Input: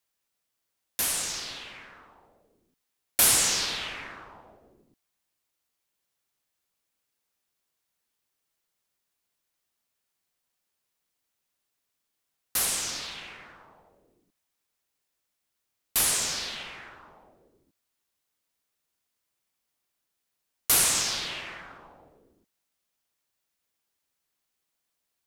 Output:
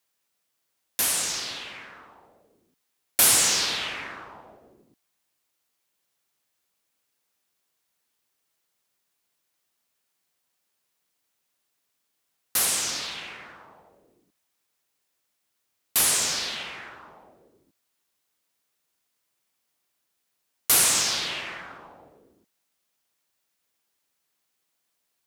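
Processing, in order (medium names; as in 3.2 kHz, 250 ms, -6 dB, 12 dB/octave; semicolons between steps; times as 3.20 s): high-pass 110 Hz 6 dB/octave; in parallel at -4 dB: saturation -23 dBFS, distortion -9 dB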